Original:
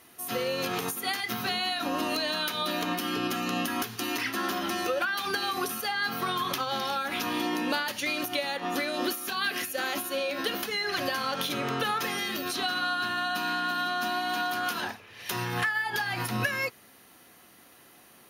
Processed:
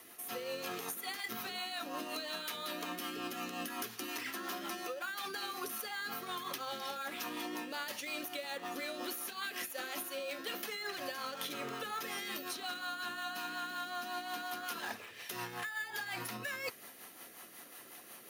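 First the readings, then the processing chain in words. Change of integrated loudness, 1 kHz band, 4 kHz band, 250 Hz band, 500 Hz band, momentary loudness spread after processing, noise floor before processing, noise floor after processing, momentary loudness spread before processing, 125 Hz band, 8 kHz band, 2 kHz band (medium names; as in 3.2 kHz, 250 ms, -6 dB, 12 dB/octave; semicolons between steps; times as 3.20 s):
-10.5 dB, -11.0 dB, -10.5 dB, -12.5 dB, -10.5 dB, 3 LU, -55 dBFS, -54 dBFS, 2 LU, -17.0 dB, -7.0 dB, -10.5 dB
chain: in parallel at -10 dB: sample-rate reducer 5.4 kHz, jitter 0%; on the sum: rotary cabinet horn 5.5 Hz; high-pass 460 Hz 6 dB/octave; treble shelf 9.9 kHz +6.5 dB; reverse; compression 6:1, threshold -42 dBFS, peak gain reduction 16.5 dB; reverse; band-stop 1.5 kHz, Q 24; trim +3.5 dB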